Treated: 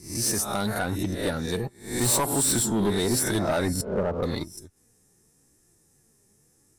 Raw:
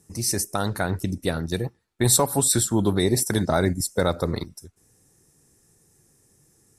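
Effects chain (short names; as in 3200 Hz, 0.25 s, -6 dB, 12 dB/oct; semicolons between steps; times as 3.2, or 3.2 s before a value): spectral swells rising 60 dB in 0.50 s; 3.81–4.23 LPF 1100 Hz 24 dB/oct; in parallel at -6 dB: crossover distortion -40.5 dBFS; on the sum: flange 0.88 Hz, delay 2.8 ms, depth 2.3 ms, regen +60%; soft clip -18.5 dBFS, distortion -10 dB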